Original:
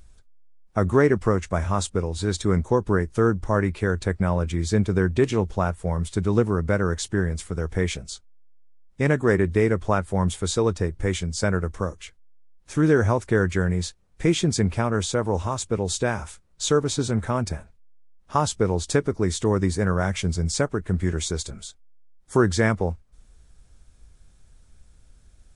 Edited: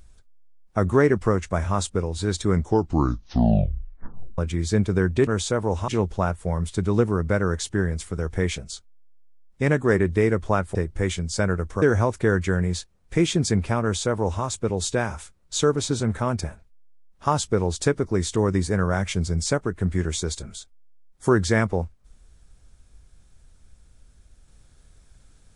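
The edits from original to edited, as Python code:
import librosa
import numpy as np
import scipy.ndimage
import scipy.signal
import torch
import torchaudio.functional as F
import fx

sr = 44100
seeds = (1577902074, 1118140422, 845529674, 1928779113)

y = fx.edit(x, sr, fx.tape_stop(start_s=2.55, length_s=1.83),
    fx.cut(start_s=10.14, length_s=0.65),
    fx.cut(start_s=11.86, length_s=1.04),
    fx.duplicate(start_s=14.9, length_s=0.61, to_s=5.27), tone=tone)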